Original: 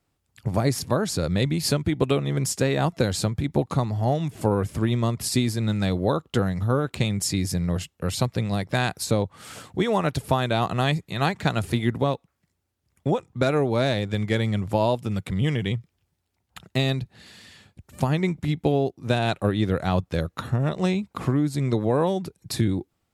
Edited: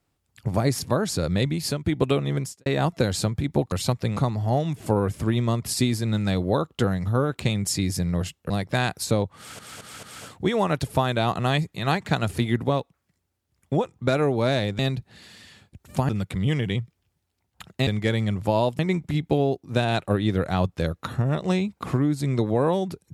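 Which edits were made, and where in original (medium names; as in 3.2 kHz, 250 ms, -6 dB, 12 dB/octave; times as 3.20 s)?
1.39–1.86 s: fade out, to -7 dB
2.36–2.66 s: fade out quadratic
8.05–8.50 s: move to 3.72 s
9.37 s: stutter 0.22 s, 4 plays
14.13–15.05 s: swap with 16.83–18.13 s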